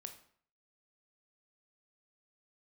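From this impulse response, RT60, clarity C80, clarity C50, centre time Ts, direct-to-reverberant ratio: 0.55 s, 14.0 dB, 10.5 dB, 12 ms, 5.5 dB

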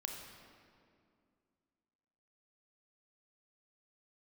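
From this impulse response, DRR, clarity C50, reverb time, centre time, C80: 2.0 dB, 3.5 dB, 2.3 s, 65 ms, 4.5 dB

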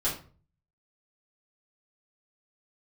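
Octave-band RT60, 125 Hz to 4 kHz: 0.75, 0.50, 0.45, 0.40, 0.35, 0.30 s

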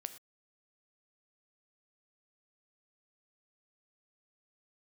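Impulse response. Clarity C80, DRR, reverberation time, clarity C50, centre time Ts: 15.5 dB, 10.5 dB, not exponential, 13.0 dB, 6 ms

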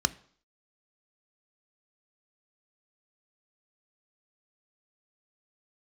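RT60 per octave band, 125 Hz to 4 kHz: 0.45, 0.55, 0.55, 0.55, 0.50, 0.60 s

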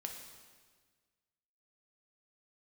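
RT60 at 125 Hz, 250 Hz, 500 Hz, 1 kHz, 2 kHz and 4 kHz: 1.8, 1.7, 1.6, 1.5, 1.5, 1.4 s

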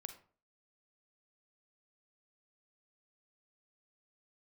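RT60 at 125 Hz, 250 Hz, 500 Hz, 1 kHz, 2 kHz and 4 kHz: 0.45, 0.45, 0.45, 0.40, 0.35, 0.25 s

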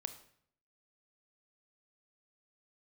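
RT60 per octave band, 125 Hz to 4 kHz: 0.80, 0.75, 0.65, 0.60, 0.60, 0.55 s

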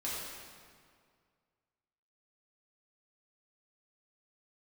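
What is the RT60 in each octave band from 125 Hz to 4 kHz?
2.3, 2.1, 2.1, 2.0, 1.8, 1.5 s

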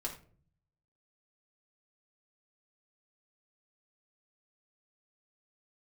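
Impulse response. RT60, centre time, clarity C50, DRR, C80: not exponential, 16 ms, 9.0 dB, -2.0 dB, 13.5 dB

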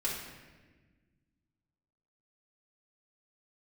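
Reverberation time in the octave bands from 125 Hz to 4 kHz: 2.4, 2.3, 1.5, 1.1, 1.4, 1.0 s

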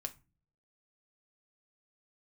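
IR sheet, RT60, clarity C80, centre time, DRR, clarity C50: 0.30 s, 25.5 dB, 5 ms, 6.0 dB, 18.5 dB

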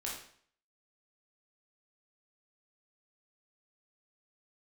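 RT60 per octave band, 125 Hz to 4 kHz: 0.55, 0.55, 0.55, 0.55, 0.55, 0.50 s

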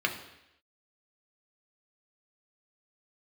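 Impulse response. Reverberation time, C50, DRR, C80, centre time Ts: 0.85 s, 9.5 dB, 2.0 dB, 12.0 dB, 19 ms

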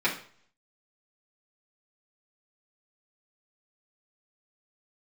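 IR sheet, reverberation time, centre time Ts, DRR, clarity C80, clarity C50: 0.50 s, 19 ms, -8.5 dB, 14.0 dB, 9.5 dB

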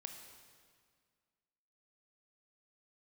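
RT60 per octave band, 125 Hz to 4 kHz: 2.0, 2.1, 1.9, 1.9, 1.8, 1.7 s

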